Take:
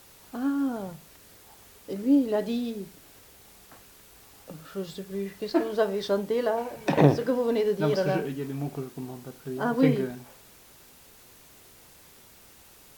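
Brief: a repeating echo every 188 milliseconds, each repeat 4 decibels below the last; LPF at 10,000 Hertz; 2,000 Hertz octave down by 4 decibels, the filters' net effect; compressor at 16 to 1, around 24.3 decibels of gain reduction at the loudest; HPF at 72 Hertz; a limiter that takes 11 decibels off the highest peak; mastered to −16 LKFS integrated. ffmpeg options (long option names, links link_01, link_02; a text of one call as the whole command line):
ffmpeg -i in.wav -af "highpass=72,lowpass=10000,equalizer=frequency=2000:width_type=o:gain=-5.5,acompressor=threshold=-37dB:ratio=16,alimiter=level_in=11dB:limit=-24dB:level=0:latency=1,volume=-11dB,aecho=1:1:188|376|564|752|940|1128|1316|1504|1692:0.631|0.398|0.25|0.158|0.0994|0.0626|0.0394|0.0249|0.0157,volume=28dB" out.wav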